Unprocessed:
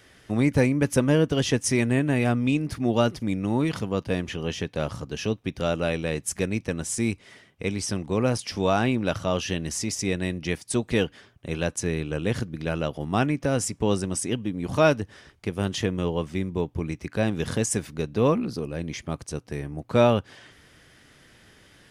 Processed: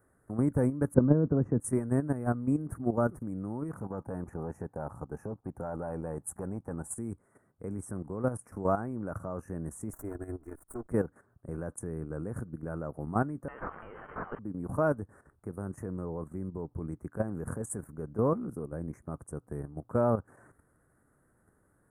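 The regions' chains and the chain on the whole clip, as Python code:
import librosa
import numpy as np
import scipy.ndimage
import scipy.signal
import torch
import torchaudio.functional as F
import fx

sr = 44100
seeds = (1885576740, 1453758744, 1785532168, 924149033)

y = fx.chain(x, sr, fx.bandpass_edges(low_hz=160.0, high_hz=4200.0),
    fx.tilt_eq(slope=-4.5), at=(0.94, 1.6))
y = fx.chain(y, sr, fx.peak_eq(hz=820.0, db=11.0, octaves=0.4),
    fx.transformer_sat(knee_hz=610.0), at=(3.79, 6.96))
y = fx.chain(y, sr, fx.lower_of_two(delay_ms=2.9),
    fx.level_steps(step_db=16), at=(9.93, 10.89))
y = fx.chain(y, sr, fx.zero_step(step_db=-28.0),
    fx.freq_invert(carrier_hz=3300),
    fx.env_flatten(amount_pct=100), at=(13.48, 14.39))
y = scipy.signal.sosfilt(scipy.signal.cheby1(3, 1.0, [1400.0, 8800.0], 'bandstop', fs=sr, output='sos'), y)
y = fx.level_steps(y, sr, step_db=11)
y = y * librosa.db_to_amplitude(-3.0)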